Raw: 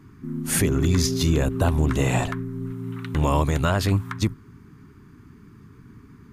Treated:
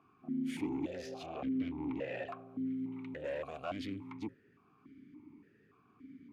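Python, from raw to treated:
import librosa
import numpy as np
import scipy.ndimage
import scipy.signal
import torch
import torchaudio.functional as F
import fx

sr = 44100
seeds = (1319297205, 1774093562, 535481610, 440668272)

y = fx.air_absorb(x, sr, metres=170.0, at=(1.26, 2.28))
y = 10.0 ** (-25.0 / 20.0) * np.tanh(y / 10.0 ** (-25.0 / 20.0))
y = fx.vowel_held(y, sr, hz=3.5)
y = F.gain(torch.from_numpy(y), 2.5).numpy()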